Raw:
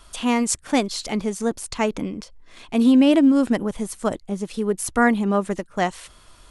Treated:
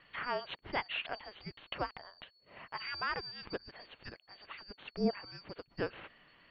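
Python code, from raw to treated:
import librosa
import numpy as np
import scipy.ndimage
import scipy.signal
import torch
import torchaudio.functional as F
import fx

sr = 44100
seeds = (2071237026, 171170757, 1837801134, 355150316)

y = fx.band_shuffle(x, sr, order='2341')
y = scipy.signal.sosfilt(scipy.signal.butter(8, 3200.0, 'lowpass', fs=sr, output='sos'), y)
y = F.gain(torch.from_numpy(y), -4.5).numpy()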